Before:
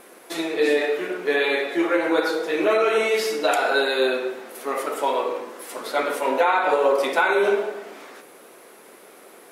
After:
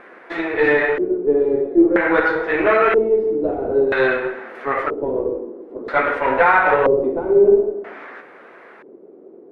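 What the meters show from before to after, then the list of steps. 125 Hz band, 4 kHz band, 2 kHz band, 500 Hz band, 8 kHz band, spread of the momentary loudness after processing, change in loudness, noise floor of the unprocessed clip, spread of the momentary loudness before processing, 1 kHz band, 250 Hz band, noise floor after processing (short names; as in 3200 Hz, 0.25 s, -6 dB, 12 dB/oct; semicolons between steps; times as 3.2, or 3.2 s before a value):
n/a, -10.5 dB, +4.5 dB, +5.0 dB, under -25 dB, 13 LU, +4.5 dB, -48 dBFS, 13 LU, +3.0 dB, +7.0 dB, -44 dBFS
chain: added harmonics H 6 -23 dB, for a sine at -7 dBFS; LFO low-pass square 0.51 Hz 370–1800 Hz; gain +2.5 dB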